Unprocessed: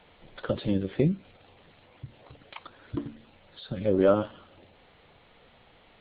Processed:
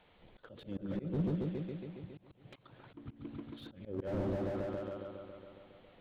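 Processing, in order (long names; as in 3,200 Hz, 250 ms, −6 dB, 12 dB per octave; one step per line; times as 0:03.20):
echo whose low-pass opens from repeat to repeat 138 ms, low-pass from 400 Hz, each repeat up 1 octave, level 0 dB
volume swells 216 ms
slew-rate limiting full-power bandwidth 21 Hz
level −8 dB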